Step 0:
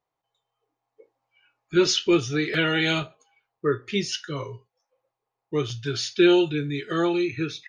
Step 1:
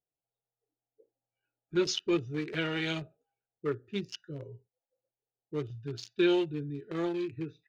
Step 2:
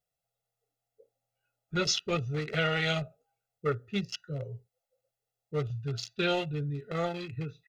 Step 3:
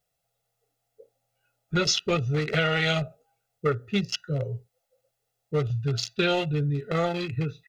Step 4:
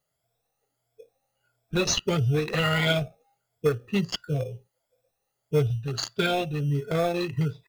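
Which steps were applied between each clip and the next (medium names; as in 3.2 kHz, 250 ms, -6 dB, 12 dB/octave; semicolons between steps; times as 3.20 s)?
local Wiener filter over 41 samples; trim -8 dB
comb 1.5 ms, depth 81%; trim +3.5 dB
compression 2.5:1, threshold -30 dBFS, peak gain reduction 5 dB; trim +8.5 dB
drifting ripple filter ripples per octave 1.7, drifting +1.5 Hz, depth 14 dB; in parallel at -9 dB: sample-and-hold 15×; on the sum: trim -3.5 dB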